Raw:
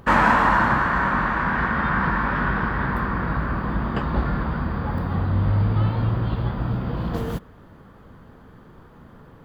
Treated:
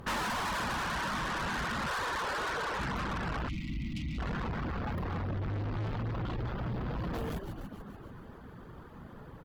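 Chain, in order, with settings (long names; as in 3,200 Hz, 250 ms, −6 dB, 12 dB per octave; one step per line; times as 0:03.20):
0:01.87–0:02.79: low shelf with overshoot 320 Hz −12.5 dB, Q 3
on a send: echo with shifted repeats 145 ms, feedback 63%, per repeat −65 Hz, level −10 dB
on the sum: tube saturation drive 31 dB, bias 0.3
reverb reduction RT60 0.55 s
0:03.49–0:04.18: gain on a spectral selection 330–1,900 Hz −29 dB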